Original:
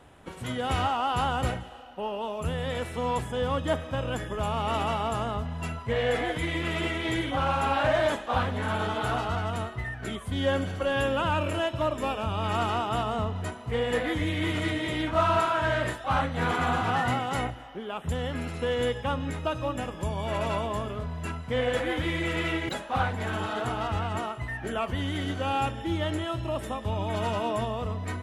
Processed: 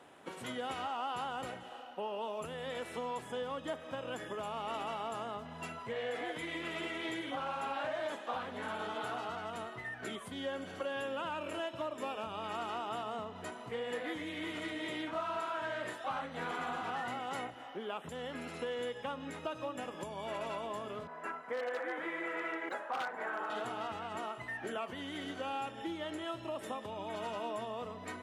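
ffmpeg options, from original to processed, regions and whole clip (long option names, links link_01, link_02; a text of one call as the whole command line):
ffmpeg -i in.wav -filter_complex "[0:a]asettb=1/sr,asplit=3[link_01][link_02][link_03];[link_01]atrim=end=21.074[link_04];[link_02]atrim=start=21.07:end=23.5,asetpts=PTS-STARTPTS,afade=type=in:duration=0.004:curve=qsin,afade=type=out:start_time=2.426:duration=0.004:curve=qsin,highpass=390,highshelf=frequency=2400:width_type=q:width=1.5:gain=-12,aeval=exprs='0.0794*(abs(mod(val(0)/0.0794+3,4)-2)-1)':channel_layout=same[link_05];[link_03]atrim=start=23.496[link_06];[link_04][link_05]acrossfade=duration=0.004:curve1=hsin:curve2=qsin[link_07];[link_07][link_06]acrossfade=duration=0.004:curve1=qsin:curve2=hsin,acompressor=threshold=-33dB:ratio=5,highpass=250,highshelf=frequency=11000:gain=-3.5,volume=-2dB" out.wav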